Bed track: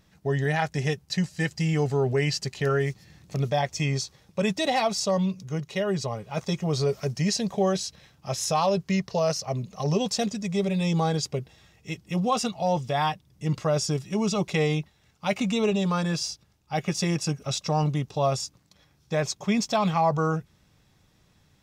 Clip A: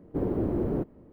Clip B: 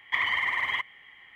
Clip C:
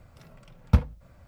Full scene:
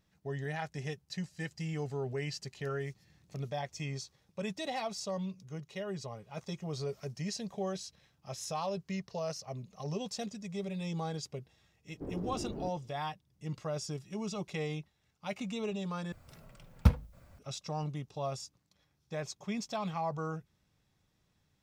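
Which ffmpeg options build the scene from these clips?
-filter_complex "[0:a]volume=-12.5dB[a];[3:a]highshelf=f=4.5k:g=7[b];[a]asplit=2[c][d];[c]atrim=end=16.124[e];[b]atrim=end=1.27,asetpts=PTS-STARTPTS,volume=-4dB[f];[d]atrim=start=17.386[g];[1:a]atrim=end=1.12,asetpts=PTS-STARTPTS,volume=-12.5dB,afade=t=in:d=0.004:c=hsin,afade=t=out:st=1.116:d=0.004:c=hsin,adelay=523026S[h];[e][f]acrossfade=d=0.004:c1=hsin:c2=hsin[i];[i][g]acrossfade=d=0.004:c1=hsin:c2=hsin[j];[j][h]amix=inputs=2:normalize=0"

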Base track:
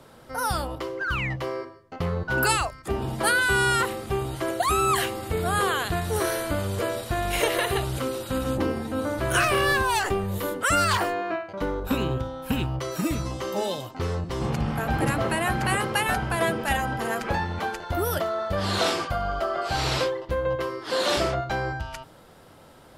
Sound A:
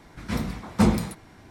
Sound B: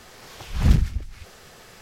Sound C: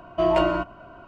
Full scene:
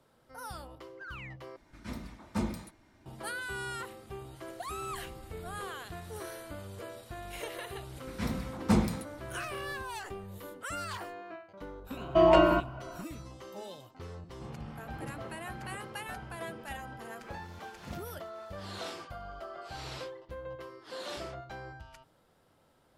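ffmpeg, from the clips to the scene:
-filter_complex "[1:a]asplit=2[a][b];[2:a]asplit=2[c][d];[0:a]volume=-16.5dB[e];[a]aecho=1:1:3.3:0.36[f];[c]acompressor=threshold=-32dB:ratio=6:attack=3.2:release=140:knee=1:detection=peak[g];[d]highpass=240[h];[e]asplit=2[i][j];[i]atrim=end=1.564[k];[f]atrim=end=1.5,asetpts=PTS-STARTPTS,volume=-13dB[l];[j]atrim=start=3.056[m];[g]atrim=end=1.81,asetpts=PTS-STARTPTS,volume=-15.5dB,afade=t=in:d=0.004:c=hsin,afade=t=out:st=1.806:d=0.004:c=hsin,adelay=4420[n];[b]atrim=end=1.5,asetpts=PTS-STARTPTS,volume=-6dB,afade=t=in:d=0.004:c=hsin,afade=t=out:st=1.496:d=0.004:c=hsin,adelay=7900[o];[3:a]atrim=end=1.07,asetpts=PTS-STARTPTS,volume=-0.5dB,afade=t=in:d=0.004:c=hsin,afade=t=out:st=1.066:d=0.004:c=hsin,adelay=11970[p];[h]atrim=end=1.81,asetpts=PTS-STARTPTS,volume=-16.5dB,afade=t=in:d=0.004:c=hsin,afade=t=out:st=1.806:d=0.004:c=hsin,adelay=17220[q];[k][l]acrossfade=d=0.004:c1=hsin:c2=hsin[r];[r][m]acrossfade=d=0.004:c1=hsin:c2=hsin[s];[s][n][o][p][q]amix=inputs=5:normalize=0"

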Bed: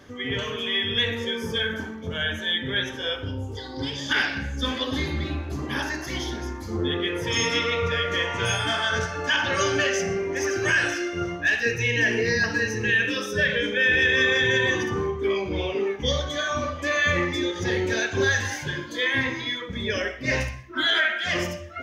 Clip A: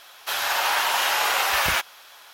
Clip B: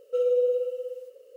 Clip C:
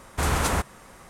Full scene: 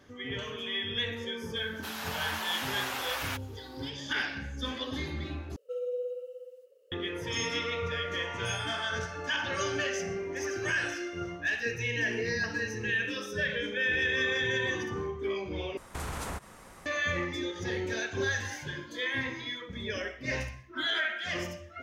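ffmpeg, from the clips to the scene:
-filter_complex "[0:a]volume=-8.5dB[a];[3:a]acompressor=threshold=-30dB:ratio=6:attack=3.2:release=140:knee=1:detection=peak[b];[a]asplit=3[c][d][e];[c]atrim=end=5.564[f];[2:a]atrim=end=1.36,asetpts=PTS-STARTPTS,volume=-11dB[g];[d]atrim=start=6.916:end=15.774[h];[b]atrim=end=1.09,asetpts=PTS-STARTPTS,volume=-3dB[i];[e]atrim=start=16.856[j];[1:a]atrim=end=2.33,asetpts=PTS-STARTPTS,volume=-13.5dB,afade=t=in:d=0.004:c=hsin,afade=t=out:st=2.326:d=0.004:c=hsin,adelay=1560[k];[f][g]acrossfade=d=0.004:c1=hsin:c2=hsin[l];[l][h]acrossfade=d=0.004:c1=hsin:c2=hsin[m];[m][i]acrossfade=d=0.004:c1=hsin:c2=hsin[n];[n][j]acrossfade=d=0.004:c1=hsin:c2=hsin[o];[o][k]amix=inputs=2:normalize=0"

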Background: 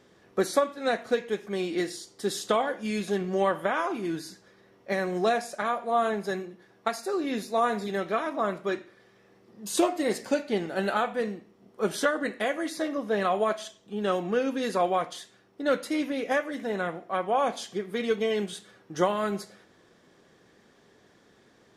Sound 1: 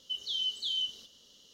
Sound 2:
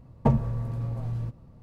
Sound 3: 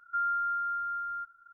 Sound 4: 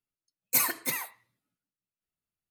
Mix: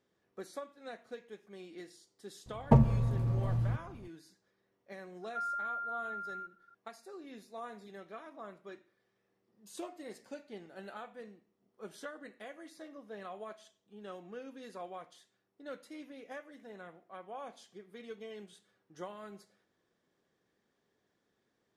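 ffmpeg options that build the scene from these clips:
-filter_complex "[0:a]volume=-19.5dB[a];[2:a]atrim=end=1.62,asetpts=PTS-STARTPTS,volume=-0.5dB,afade=t=in:d=0.004:c=hsin,afade=t=out:st=1.616:d=0.004:c=hsin,adelay=2460[b];[3:a]atrim=end=1.53,asetpts=PTS-STARTPTS,volume=-7dB,afade=t=in:d=0.004:c=hsin,afade=t=out:st=1.526:d=0.004:c=hsin,adelay=5220[c];[a][b][c]amix=inputs=3:normalize=0"

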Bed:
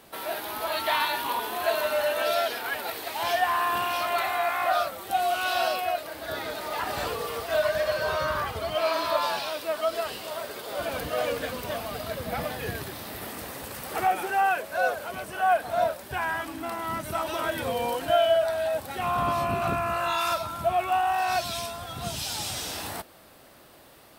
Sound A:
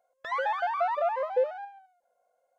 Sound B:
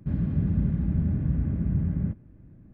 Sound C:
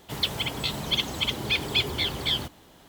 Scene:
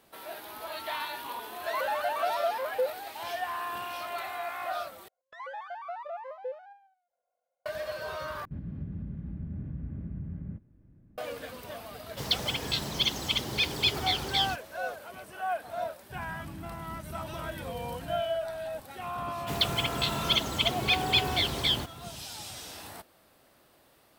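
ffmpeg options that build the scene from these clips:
-filter_complex "[1:a]asplit=2[a][b];[2:a]asplit=2[c][d];[3:a]asplit=2[e][f];[0:a]volume=-9.5dB[g];[a]aemphasis=mode=production:type=50fm[h];[b]acontrast=67[i];[c]alimiter=limit=-21dB:level=0:latency=1:release=373[j];[e]equalizer=f=5.3k:w=1.9:g=7.5[k];[d]acompressor=threshold=-36dB:ratio=6:attack=3.2:release=140:knee=1:detection=peak[l];[g]asplit=3[m][n][o];[m]atrim=end=5.084[p];[i]atrim=end=2.58,asetpts=PTS-STARTPTS,volume=-18dB[q];[n]atrim=start=7.656:end=8.454[r];[j]atrim=end=2.73,asetpts=PTS-STARTPTS,volume=-8dB[s];[o]atrim=start=11.176[t];[h]atrim=end=2.58,asetpts=PTS-STARTPTS,volume=-3dB,afade=t=in:d=0.004:c=hsin,afade=t=out:st=2.576:d=0.004:c=hsin,adelay=1420[u];[k]atrim=end=2.88,asetpts=PTS-STARTPTS,volume=-3.5dB,afade=t=in:d=0.004:c=hsin,afade=t=out:st=2.876:d=0.004:c=hsin,adelay=12080[v];[l]atrim=end=2.73,asetpts=PTS-STARTPTS,volume=-5dB,afade=t=in:d=0.004:c=hsin,afade=t=out:st=2.726:d=0.004:c=hsin,adelay=16090[w];[f]atrim=end=2.88,asetpts=PTS-STARTPTS,volume=-0.5dB,afade=t=in:d=0.004:c=hsin,afade=t=out:st=2.876:d=0.004:c=hsin,adelay=19380[x];[p][q]acrossfade=d=0.004:c1=hsin:c2=hsin[y];[y][r]acrossfade=d=0.004:c1=hsin:c2=hsin[z];[z][s]acrossfade=d=0.004:c1=hsin:c2=hsin[aa];[aa][t]acrossfade=d=0.004:c1=hsin:c2=hsin[ab];[ab][u][v][w][x]amix=inputs=5:normalize=0"

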